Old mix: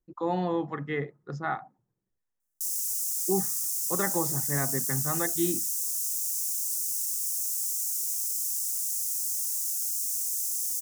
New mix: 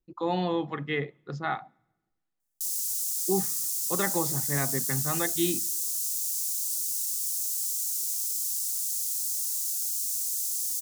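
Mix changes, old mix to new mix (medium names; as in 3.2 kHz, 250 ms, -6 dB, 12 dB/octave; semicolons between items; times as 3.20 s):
speech: send on; master: add high-order bell 3.2 kHz +9 dB 1.2 oct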